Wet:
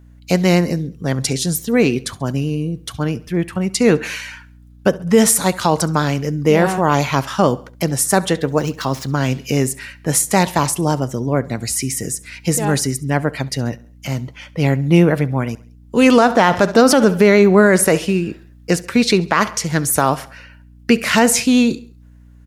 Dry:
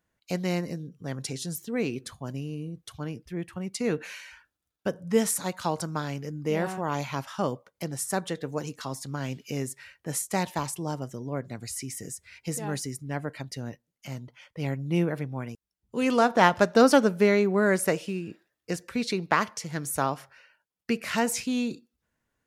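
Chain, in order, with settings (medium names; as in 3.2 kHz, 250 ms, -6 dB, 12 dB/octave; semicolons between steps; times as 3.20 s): 8.46–9.13 s: median filter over 5 samples; vibrato 9 Hz 28 cents; hum 60 Hz, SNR 30 dB; feedback delay 68 ms, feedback 47%, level -21.5 dB; loudness maximiser +15.5 dB; trim -1 dB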